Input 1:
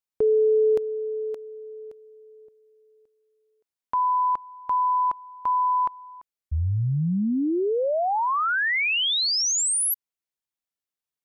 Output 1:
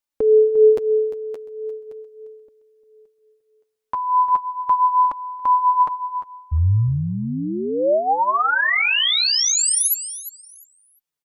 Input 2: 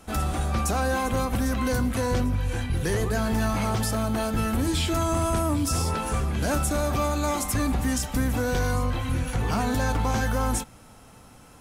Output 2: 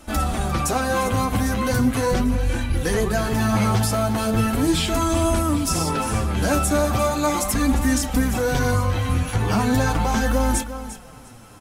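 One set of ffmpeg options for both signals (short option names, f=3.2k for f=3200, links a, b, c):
-af "aecho=1:1:350|700|1050:0.224|0.0515|0.0118,flanger=delay=3.3:depth=7.3:regen=16:speed=0.38:shape=sinusoidal,volume=8dB"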